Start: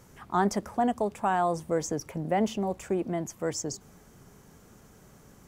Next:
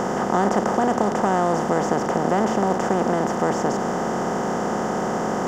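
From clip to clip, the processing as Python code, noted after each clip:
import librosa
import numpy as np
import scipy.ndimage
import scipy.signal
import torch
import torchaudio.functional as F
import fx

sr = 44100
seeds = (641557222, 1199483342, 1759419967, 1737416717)

y = fx.bin_compress(x, sr, power=0.2)
y = fx.high_shelf(y, sr, hz=4000.0, db=-10.5)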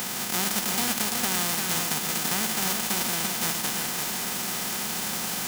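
y = fx.envelope_flatten(x, sr, power=0.1)
y = y + 10.0 ** (-4.5 / 20.0) * np.pad(y, (int(341 * sr / 1000.0), 0))[:len(y)]
y = y * librosa.db_to_amplitude(-7.5)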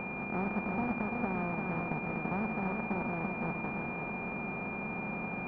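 y = fx.air_absorb(x, sr, metres=390.0)
y = fx.pwm(y, sr, carrier_hz=2400.0)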